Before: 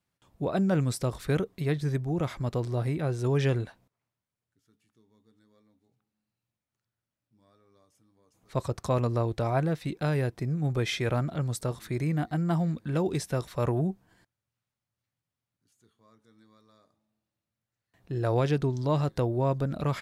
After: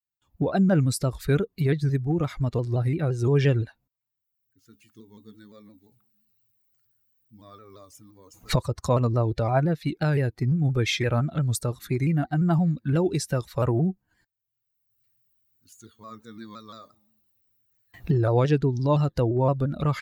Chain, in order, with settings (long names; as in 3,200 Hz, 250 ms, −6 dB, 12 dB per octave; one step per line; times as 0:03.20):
spectral dynamics exaggerated over time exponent 1.5
camcorder AGC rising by 25 dB per second
pitch modulation by a square or saw wave saw down 5.8 Hz, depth 100 cents
level +6.5 dB